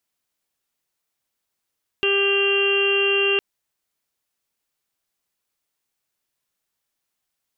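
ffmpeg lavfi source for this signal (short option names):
-f lavfi -i "aevalsrc='0.0944*sin(2*PI*397*t)+0.0126*sin(2*PI*794*t)+0.0237*sin(2*PI*1191*t)+0.0237*sin(2*PI*1588*t)+0.0126*sin(2*PI*1985*t)+0.0112*sin(2*PI*2382*t)+0.112*sin(2*PI*2779*t)+0.0316*sin(2*PI*3176*t)':d=1.36:s=44100"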